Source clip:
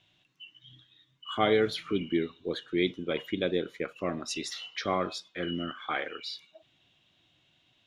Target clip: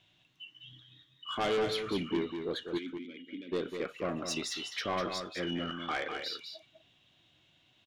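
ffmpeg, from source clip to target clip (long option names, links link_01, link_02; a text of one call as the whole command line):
ffmpeg -i in.wav -filter_complex "[0:a]asoftclip=type=tanh:threshold=-26.5dB,asplit=3[link_01][link_02][link_03];[link_01]afade=type=out:start_time=2.77:duration=0.02[link_04];[link_02]asplit=3[link_05][link_06][link_07];[link_05]bandpass=frequency=270:width_type=q:width=8,volume=0dB[link_08];[link_06]bandpass=frequency=2290:width_type=q:width=8,volume=-6dB[link_09];[link_07]bandpass=frequency=3010:width_type=q:width=8,volume=-9dB[link_10];[link_08][link_09][link_10]amix=inputs=3:normalize=0,afade=type=in:start_time=2.77:duration=0.02,afade=type=out:start_time=3.51:duration=0.02[link_11];[link_03]afade=type=in:start_time=3.51:duration=0.02[link_12];[link_04][link_11][link_12]amix=inputs=3:normalize=0,aecho=1:1:200:0.447" out.wav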